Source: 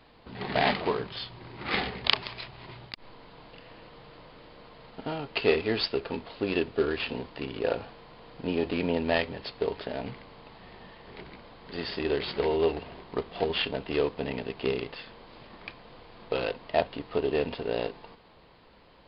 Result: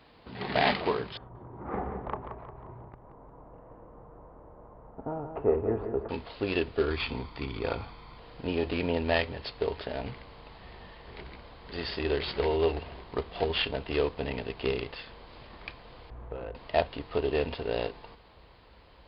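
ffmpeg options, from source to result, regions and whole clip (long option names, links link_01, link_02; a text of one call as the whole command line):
ffmpeg -i in.wav -filter_complex "[0:a]asettb=1/sr,asplit=3[link_01][link_02][link_03];[link_01]atrim=end=1.174[link_04];[link_02]atrim=start=1.17:end=6.09,asetpts=PTS-STARTPTS,afade=type=in:duration=0.004:curve=qsin,afade=type=out:start_time=4.916:duration=0.004:curve=qsin,lowpass=frequency=1100:width=0.5412,lowpass=frequency=1100:width=1.3066,aecho=1:1:177|354|531|708|885:0.398|0.179|0.0806|0.0363|0.0163,atrim=end_sample=216972[link_05];[link_03]atrim=start=6.086[link_06];[link_04][link_05]acrossfade=duration=0.004:curve1=hsin:curve2=qsin[link_07];[link_07][link_06]acrossfade=duration=0.004:curve1=qsin:curve2=hsin,asettb=1/sr,asplit=3[link_08][link_09][link_10];[link_08]atrim=end=6.904[link_11];[link_09]atrim=start=6.9:end=8.18,asetpts=PTS-STARTPTS,afade=type=in:duration=0.004:curve=qsin,afade=type=out:start_time=1.276:duration=0.004:curve=qsin,bandreject=frequency=2900:width=15,aecho=1:1:0.9:0.49,atrim=end_sample=56448[link_12];[link_10]atrim=start=8.176[link_13];[link_11][link_12]acrossfade=duration=0.004:curve1=hsin:curve2=qsin[link_14];[link_14][link_13]acrossfade=duration=0.004:curve1=qsin:curve2=hsin,asettb=1/sr,asplit=3[link_15][link_16][link_17];[link_15]atrim=end=16.104[link_18];[link_16]atrim=start=16.1:end=16.55,asetpts=PTS-STARTPTS,afade=type=in:duration=0.004:curve=qsin,afade=type=out:start_time=0.446:duration=0.004:curve=qsin,lowpass=1300,acompressor=threshold=-36dB:ratio=3:attack=3.2:release=140:knee=1:detection=peak,aeval=exprs='val(0)+0.00316*(sin(2*PI*60*n/s)+sin(2*PI*2*60*n/s)/2+sin(2*PI*3*60*n/s)/3+sin(2*PI*4*60*n/s)/4+sin(2*PI*5*60*n/s)/5)':channel_layout=same[link_19];[link_17]atrim=start=16.546[link_20];[link_18][link_19]acrossfade=duration=0.004:curve1=hsin:curve2=qsin[link_21];[link_21][link_20]acrossfade=duration=0.004:curve1=qsin:curve2=hsin,highpass=40,asubboost=boost=4.5:cutoff=77" out.wav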